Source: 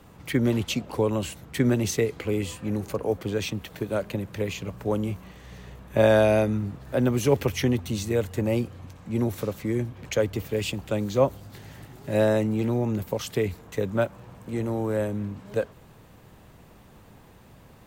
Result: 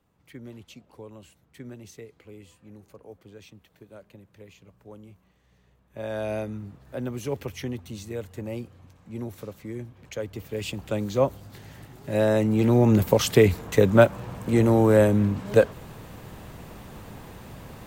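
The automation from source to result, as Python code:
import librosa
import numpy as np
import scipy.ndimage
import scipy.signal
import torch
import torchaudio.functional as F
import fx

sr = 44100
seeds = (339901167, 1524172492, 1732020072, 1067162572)

y = fx.gain(x, sr, db=fx.line((5.87, -19.5), (6.32, -9.0), (10.19, -9.0), (10.86, -1.0), (12.21, -1.0), (12.95, 9.0)))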